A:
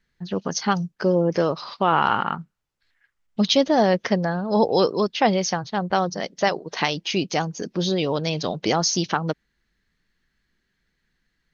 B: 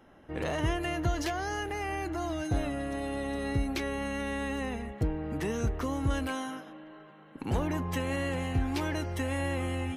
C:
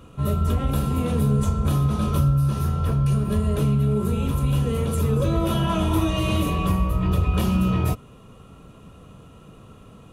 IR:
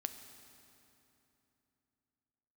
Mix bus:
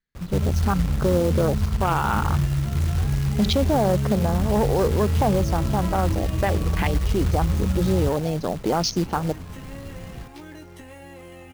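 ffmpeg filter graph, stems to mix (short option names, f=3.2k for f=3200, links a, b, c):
-filter_complex "[0:a]afwtdn=0.0562,acontrast=79,volume=-5.5dB[a];[1:a]lowshelf=f=190:g=5,acrossover=split=120|260|590[b][c][d][e];[b]acompressor=threshold=-35dB:ratio=4[f];[c]acompressor=threshold=-46dB:ratio=4[g];[d]acompressor=threshold=-41dB:ratio=4[h];[e]acompressor=threshold=-42dB:ratio=4[i];[f][g][h][i]amix=inputs=4:normalize=0,flanger=delay=16.5:depth=2.2:speed=0.33,adelay=1600,volume=-1.5dB[j];[2:a]aemphasis=mode=reproduction:type=riaa,acompressor=threshold=-16dB:ratio=4,acrusher=bits=6:mix=0:aa=0.000001,adelay=150,volume=-5dB,asplit=2[k][l];[l]volume=-15.5dB,aecho=0:1:62|124|186|248|310|372:1|0.45|0.202|0.0911|0.041|0.0185[m];[a][j][k][m]amix=inputs=4:normalize=0,acrusher=bits=4:mode=log:mix=0:aa=0.000001,alimiter=limit=-12.5dB:level=0:latency=1:release=11"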